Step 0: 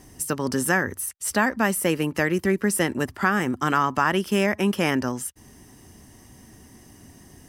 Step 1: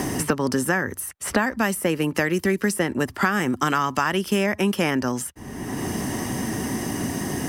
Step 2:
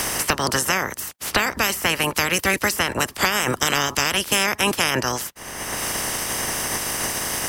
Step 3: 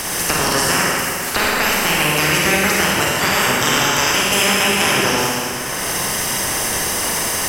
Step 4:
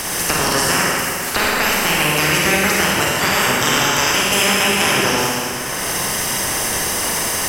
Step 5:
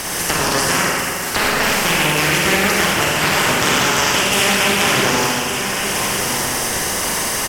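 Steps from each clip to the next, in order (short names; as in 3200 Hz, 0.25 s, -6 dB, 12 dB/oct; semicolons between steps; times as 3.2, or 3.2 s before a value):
three-band squash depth 100%
spectral limiter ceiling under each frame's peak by 25 dB; gain +1.5 dB
reverb RT60 2.6 s, pre-delay 36 ms, DRR -5.5 dB; gain -1 dB
nothing audible
on a send: echo 1.16 s -8.5 dB; on the sum: Doppler distortion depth 0.26 ms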